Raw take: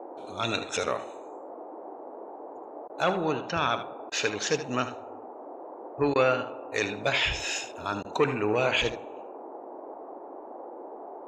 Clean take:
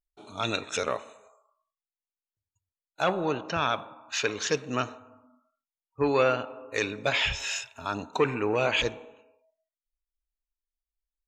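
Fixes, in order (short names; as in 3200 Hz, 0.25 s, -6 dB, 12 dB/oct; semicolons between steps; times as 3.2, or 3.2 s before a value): interpolate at 2.88/4.1/6.14/8.03, 15 ms; noise print and reduce 30 dB; inverse comb 76 ms -11.5 dB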